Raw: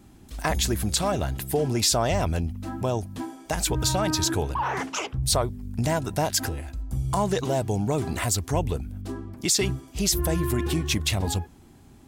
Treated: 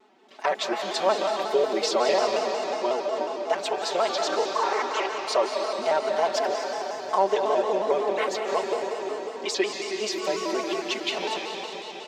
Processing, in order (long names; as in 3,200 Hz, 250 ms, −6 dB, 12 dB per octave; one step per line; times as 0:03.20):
high-pass filter 380 Hz 24 dB per octave
high-frequency loss of the air 200 metres
notch filter 1,600 Hz, Q 23
comb filter 4.9 ms, depth 95%
comb and all-pass reverb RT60 4.3 s, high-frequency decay 1×, pre-delay 120 ms, DRR 1.5 dB
pitch modulation by a square or saw wave square 5.5 Hz, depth 100 cents